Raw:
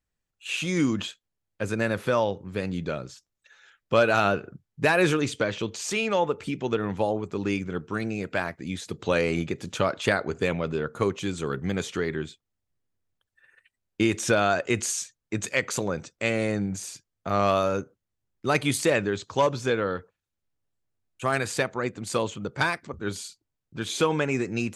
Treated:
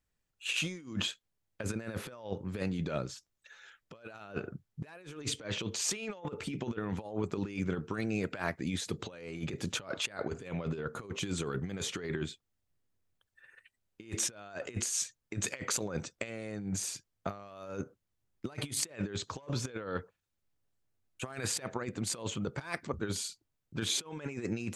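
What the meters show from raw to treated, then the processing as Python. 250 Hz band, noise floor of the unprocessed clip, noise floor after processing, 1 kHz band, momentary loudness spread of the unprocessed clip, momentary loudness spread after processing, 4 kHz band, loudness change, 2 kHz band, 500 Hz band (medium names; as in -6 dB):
-9.5 dB, -83 dBFS, -83 dBFS, -16.0 dB, 11 LU, 11 LU, -4.0 dB, -10.0 dB, -13.0 dB, -14.5 dB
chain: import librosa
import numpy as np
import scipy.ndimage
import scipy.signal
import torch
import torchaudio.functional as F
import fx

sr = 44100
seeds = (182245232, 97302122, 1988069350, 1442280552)

y = fx.over_compress(x, sr, threshold_db=-31.0, ratio=-0.5)
y = y * 10.0 ** (-5.0 / 20.0)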